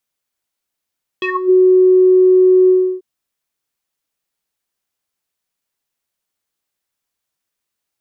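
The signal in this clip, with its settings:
subtractive voice square F#4 12 dB per octave, low-pass 400 Hz, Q 9.7, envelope 3 octaves, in 0.27 s, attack 1.9 ms, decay 0.10 s, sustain −3 dB, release 0.32 s, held 1.47 s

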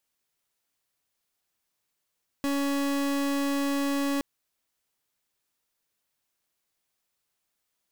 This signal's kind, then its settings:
pulse wave 280 Hz, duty 38% −27 dBFS 1.77 s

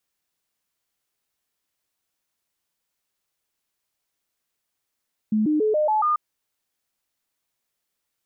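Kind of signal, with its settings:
stepped sweep 215 Hz up, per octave 2, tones 6, 0.14 s, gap 0.00 s −17.5 dBFS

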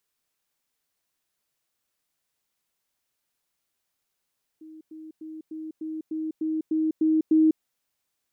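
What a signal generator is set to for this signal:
level staircase 315 Hz −42 dBFS, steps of 3 dB, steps 10, 0.20 s 0.10 s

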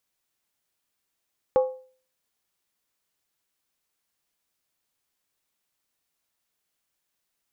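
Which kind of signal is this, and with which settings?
struck skin, lowest mode 516 Hz, decay 0.44 s, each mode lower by 10 dB, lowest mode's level −13.5 dB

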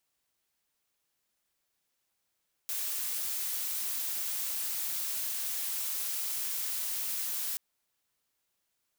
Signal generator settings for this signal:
noise blue, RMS −34 dBFS 4.88 s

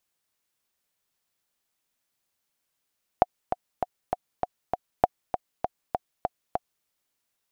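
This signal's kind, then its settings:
click track 198 BPM, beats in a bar 6, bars 2, 727 Hz, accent 8.5 dB −3.5 dBFS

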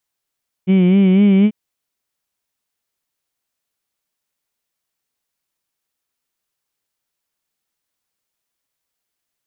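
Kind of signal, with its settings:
vowel by formant synthesis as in heed, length 0.84 s, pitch 182 Hz, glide +2 semitones, vibrato 4 Hz, vibrato depth 0.8 semitones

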